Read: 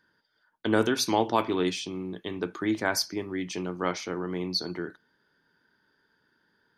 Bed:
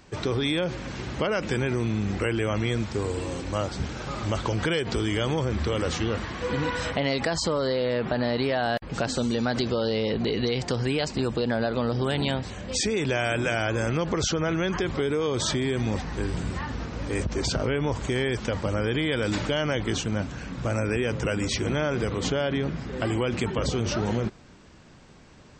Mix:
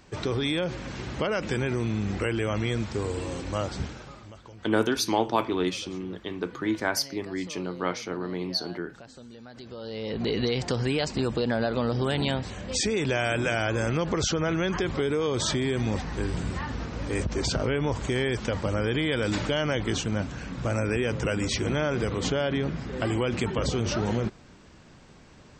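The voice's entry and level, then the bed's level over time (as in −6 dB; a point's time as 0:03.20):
4.00 s, 0.0 dB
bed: 0:03.81 −1.5 dB
0:04.35 −20.5 dB
0:09.51 −20.5 dB
0:10.30 −0.5 dB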